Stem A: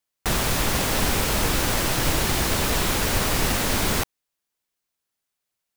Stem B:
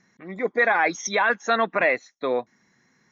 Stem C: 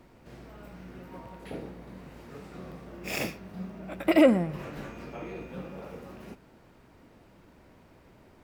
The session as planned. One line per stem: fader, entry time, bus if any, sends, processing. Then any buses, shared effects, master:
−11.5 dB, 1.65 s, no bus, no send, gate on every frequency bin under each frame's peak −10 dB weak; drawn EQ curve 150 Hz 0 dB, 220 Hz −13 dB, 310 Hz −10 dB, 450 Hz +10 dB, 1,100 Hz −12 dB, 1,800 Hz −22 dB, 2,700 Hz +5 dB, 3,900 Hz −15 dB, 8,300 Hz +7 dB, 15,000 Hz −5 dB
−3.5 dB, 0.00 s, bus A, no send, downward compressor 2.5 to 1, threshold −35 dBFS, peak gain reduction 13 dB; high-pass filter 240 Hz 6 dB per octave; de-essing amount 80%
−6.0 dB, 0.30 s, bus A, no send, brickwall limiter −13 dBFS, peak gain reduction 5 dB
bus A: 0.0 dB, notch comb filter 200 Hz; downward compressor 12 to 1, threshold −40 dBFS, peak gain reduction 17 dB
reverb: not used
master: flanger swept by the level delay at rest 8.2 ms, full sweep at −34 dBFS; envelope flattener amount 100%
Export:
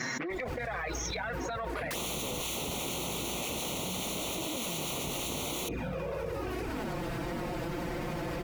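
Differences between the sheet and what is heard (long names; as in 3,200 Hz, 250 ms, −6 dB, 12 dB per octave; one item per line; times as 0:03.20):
stem A: missing drawn EQ curve 150 Hz 0 dB, 220 Hz −13 dB, 310 Hz −10 dB, 450 Hz +10 dB, 1,100 Hz −12 dB, 1,800 Hz −22 dB, 2,700 Hz +5 dB, 3,900 Hz −15 dB, 8,300 Hz +7 dB, 15,000 Hz −5 dB
stem C −6.0 dB → +0.5 dB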